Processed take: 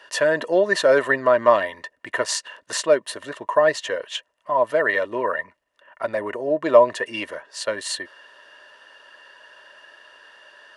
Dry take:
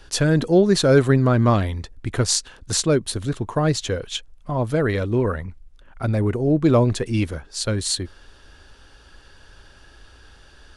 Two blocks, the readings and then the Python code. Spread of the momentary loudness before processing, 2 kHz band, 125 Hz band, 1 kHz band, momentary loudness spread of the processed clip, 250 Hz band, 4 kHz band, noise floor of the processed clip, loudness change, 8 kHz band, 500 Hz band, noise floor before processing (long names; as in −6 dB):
13 LU, +7.0 dB, −24.0 dB, +5.0 dB, 15 LU, −11.5 dB, −3.0 dB, −70 dBFS, −0.5 dB, −5.5 dB, +2.5 dB, −50 dBFS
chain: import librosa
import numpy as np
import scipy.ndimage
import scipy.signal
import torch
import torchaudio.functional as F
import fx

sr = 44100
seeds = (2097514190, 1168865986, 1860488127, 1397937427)

y = scipy.signal.sosfilt(scipy.signal.butter(2, 380.0, 'highpass', fs=sr, output='sos'), x)
y = fx.peak_eq(y, sr, hz=1700.0, db=7.5, octaves=1.2)
y = fx.small_body(y, sr, hz=(610.0, 980.0, 1800.0, 2800.0), ring_ms=35, db=16)
y = F.gain(torch.from_numpy(y), -6.0).numpy()